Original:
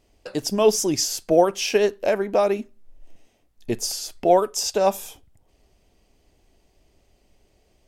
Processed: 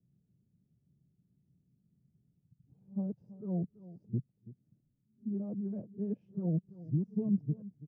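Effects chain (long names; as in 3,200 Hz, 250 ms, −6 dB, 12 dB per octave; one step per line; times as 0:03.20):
played backwards from end to start
flat-topped band-pass 150 Hz, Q 2.1
single-tap delay 331 ms −17 dB
level +4 dB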